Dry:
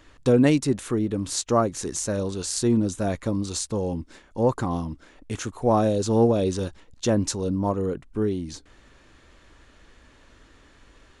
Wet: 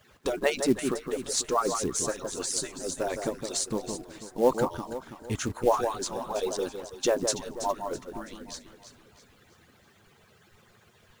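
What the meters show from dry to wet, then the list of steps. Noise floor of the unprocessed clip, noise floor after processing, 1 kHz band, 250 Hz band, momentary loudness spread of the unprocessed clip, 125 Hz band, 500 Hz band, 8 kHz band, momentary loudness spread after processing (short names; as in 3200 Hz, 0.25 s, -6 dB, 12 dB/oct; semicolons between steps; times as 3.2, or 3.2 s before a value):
-55 dBFS, -61 dBFS, -1.5 dB, -10.0 dB, 13 LU, -14.5 dB, -4.0 dB, 0.0 dB, 13 LU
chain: median-filter separation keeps percussive; echo with dull and thin repeats by turns 0.164 s, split 1600 Hz, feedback 63%, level -6.5 dB; companded quantiser 6-bit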